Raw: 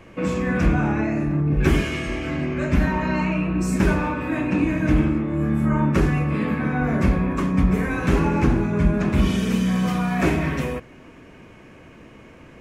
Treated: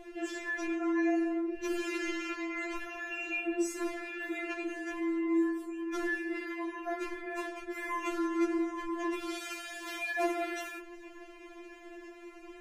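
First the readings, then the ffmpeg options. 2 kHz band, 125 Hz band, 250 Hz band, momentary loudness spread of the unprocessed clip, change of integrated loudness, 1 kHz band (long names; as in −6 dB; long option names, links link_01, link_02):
−7.5 dB, below −40 dB, −12.5 dB, 5 LU, −13.0 dB, −11.0 dB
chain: -af "alimiter=limit=-17dB:level=0:latency=1:release=273,afftfilt=real='re*4*eq(mod(b,16),0)':imag='im*4*eq(mod(b,16),0)':win_size=2048:overlap=0.75"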